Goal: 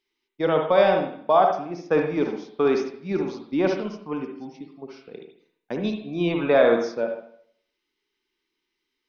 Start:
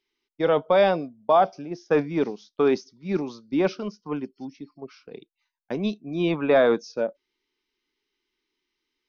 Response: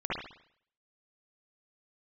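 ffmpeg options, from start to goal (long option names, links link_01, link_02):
-filter_complex "[0:a]asplit=2[link_01][link_02];[1:a]atrim=start_sample=2205,lowshelf=frequency=140:gain=-9.5[link_03];[link_02][link_03]afir=irnorm=-1:irlink=0,volume=-8dB[link_04];[link_01][link_04]amix=inputs=2:normalize=0,volume=-2.5dB"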